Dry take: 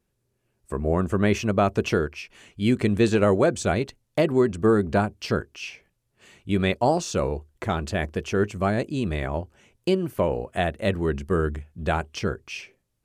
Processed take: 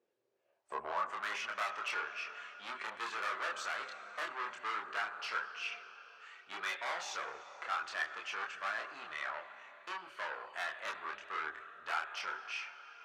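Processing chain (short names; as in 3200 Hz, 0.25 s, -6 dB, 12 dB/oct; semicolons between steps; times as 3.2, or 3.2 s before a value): air absorption 130 m; Schroeder reverb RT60 3.5 s, combs from 30 ms, DRR 13.5 dB; soft clip -26 dBFS, distortion -6 dB; chorus voices 6, 0.32 Hz, delay 27 ms, depth 1.9 ms; high-pass sweep 440 Hz -> 1300 Hz, 0.18–1.26; gain -1 dB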